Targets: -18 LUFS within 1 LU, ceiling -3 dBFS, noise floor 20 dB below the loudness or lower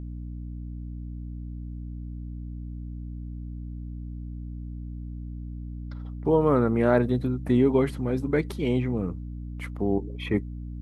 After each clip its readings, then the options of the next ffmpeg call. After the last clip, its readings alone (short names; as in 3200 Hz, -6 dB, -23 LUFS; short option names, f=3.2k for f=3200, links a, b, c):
hum 60 Hz; harmonics up to 300 Hz; hum level -33 dBFS; loudness -29.0 LUFS; peak -7.0 dBFS; loudness target -18.0 LUFS
-> -af "bandreject=f=60:t=h:w=6,bandreject=f=120:t=h:w=6,bandreject=f=180:t=h:w=6,bandreject=f=240:t=h:w=6,bandreject=f=300:t=h:w=6"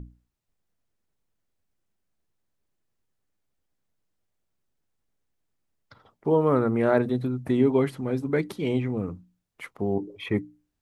hum none; loudness -25.5 LUFS; peak -7.0 dBFS; loudness target -18.0 LUFS
-> -af "volume=7.5dB,alimiter=limit=-3dB:level=0:latency=1"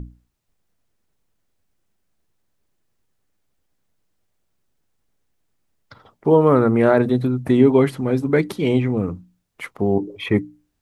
loudness -18.5 LUFS; peak -3.0 dBFS; noise floor -71 dBFS